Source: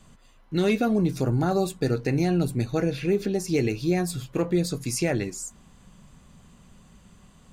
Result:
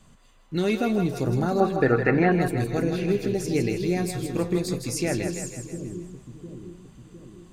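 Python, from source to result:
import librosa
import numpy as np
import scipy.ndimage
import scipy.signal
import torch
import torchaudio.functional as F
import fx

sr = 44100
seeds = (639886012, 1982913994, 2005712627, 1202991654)

y = fx.curve_eq(x, sr, hz=(130.0, 1700.0, 7100.0), db=(0, 15, -22), at=(1.6, 2.32))
y = fx.echo_split(y, sr, split_hz=380.0, low_ms=706, high_ms=160, feedback_pct=52, wet_db=-6.5)
y = F.gain(torch.from_numpy(y), -1.5).numpy()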